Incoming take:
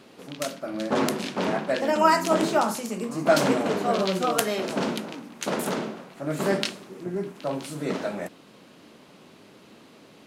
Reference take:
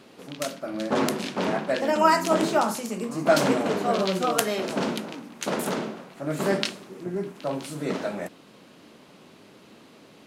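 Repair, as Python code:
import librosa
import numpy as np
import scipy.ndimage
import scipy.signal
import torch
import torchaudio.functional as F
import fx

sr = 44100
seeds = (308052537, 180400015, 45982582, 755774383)

y = fx.fix_declip(x, sr, threshold_db=-6.5)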